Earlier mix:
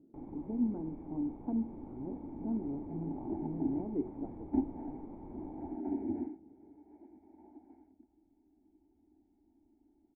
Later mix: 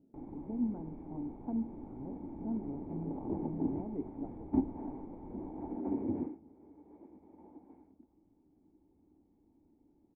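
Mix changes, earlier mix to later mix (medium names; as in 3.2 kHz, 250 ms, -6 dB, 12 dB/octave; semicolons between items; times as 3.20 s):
speech: add peaking EQ 330 Hz -9.5 dB 0.44 oct; second sound: remove static phaser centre 750 Hz, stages 8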